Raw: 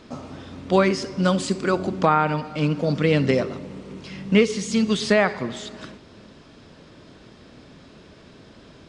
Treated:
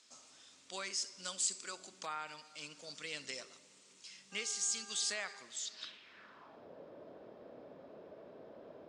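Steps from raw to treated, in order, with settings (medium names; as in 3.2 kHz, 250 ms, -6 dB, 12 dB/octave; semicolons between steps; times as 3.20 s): 4.31–5.41 s: mains buzz 400 Hz, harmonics 4, -33 dBFS -3 dB/octave; band-pass sweep 7.6 kHz -> 580 Hz, 5.57–6.67 s; trim +2 dB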